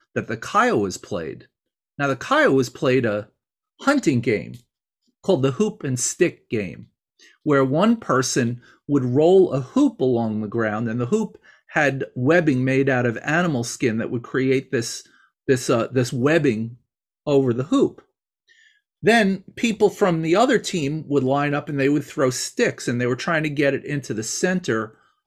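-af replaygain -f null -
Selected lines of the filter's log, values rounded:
track_gain = +0.9 dB
track_peak = 0.456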